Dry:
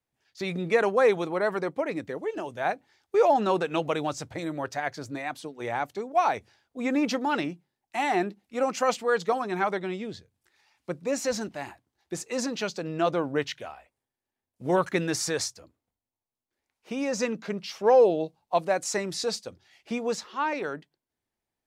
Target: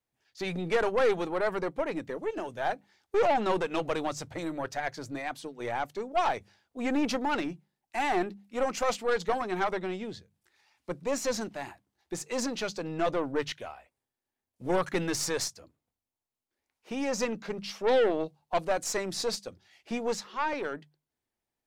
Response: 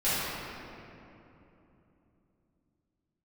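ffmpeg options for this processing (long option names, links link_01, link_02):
-af "bandreject=frequency=50:width_type=h:width=6,bandreject=frequency=100:width_type=h:width=6,bandreject=frequency=150:width_type=h:width=6,bandreject=frequency=200:width_type=h:width=6,aeval=exprs='0.335*(cos(1*acos(clip(val(0)/0.335,-1,1)))-cos(1*PI/2))+0.0531*(cos(5*acos(clip(val(0)/0.335,-1,1)))-cos(5*PI/2))+0.0335*(cos(8*acos(clip(val(0)/0.335,-1,1)))-cos(8*PI/2))':channel_layout=same,volume=-6.5dB"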